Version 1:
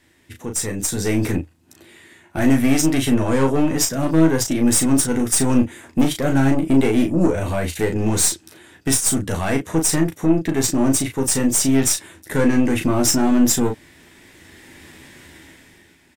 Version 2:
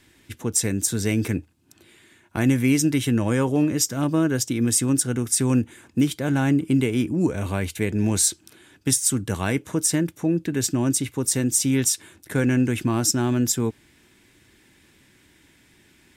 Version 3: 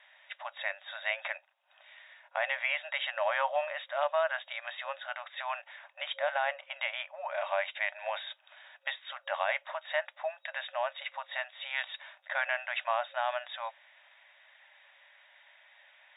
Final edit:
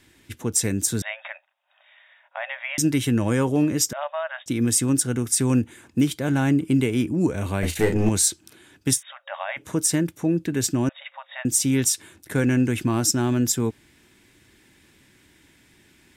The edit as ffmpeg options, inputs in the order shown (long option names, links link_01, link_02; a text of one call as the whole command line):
ffmpeg -i take0.wav -i take1.wav -i take2.wav -filter_complex "[2:a]asplit=4[link_01][link_02][link_03][link_04];[1:a]asplit=6[link_05][link_06][link_07][link_08][link_09][link_10];[link_05]atrim=end=1.022[link_11];[link_01]atrim=start=1.018:end=2.782[link_12];[link_06]atrim=start=2.778:end=3.932[link_13];[link_02]atrim=start=3.928:end=4.462[link_14];[link_07]atrim=start=4.458:end=7.632[link_15];[0:a]atrim=start=7.628:end=8.092[link_16];[link_08]atrim=start=8.088:end=9.03[link_17];[link_03]atrim=start=8.93:end=9.66[link_18];[link_09]atrim=start=9.56:end=10.892[link_19];[link_04]atrim=start=10.888:end=11.452[link_20];[link_10]atrim=start=11.448[link_21];[link_11][link_12]acrossfade=duration=0.004:curve1=hsin:curve2=hsin[link_22];[link_22][link_13]acrossfade=duration=0.004:curve1=hsin:curve2=hsin[link_23];[link_23][link_14]acrossfade=duration=0.004:curve1=hsin:curve2=hsin[link_24];[link_24][link_15]acrossfade=duration=0.004:curve1=hsin:curve2=hsin[link_25];[link_25][link_16]acrossfade=duration=0.004:curve1=hsin:curve2=hsin[link_26];[link_26][link_17]acrossfade=duration=0.004:curve1=hsin:curve2=hsin[link_27];[link_27][link_18]acrossfade=duration=0.1:curve1=tri:curve2=tri[link_28];[link_28][link_19]acrossfade=duration=0.1:curve1=tri:curve2=tri[link_29];[link_29][link_20]acrossfade=duration=0.004:curve1=hsin:curve2=hsin[link_30];[link_30][link_21]acrossfade=duration=0.004:curve1=hsin:curve2=hsin" out.wav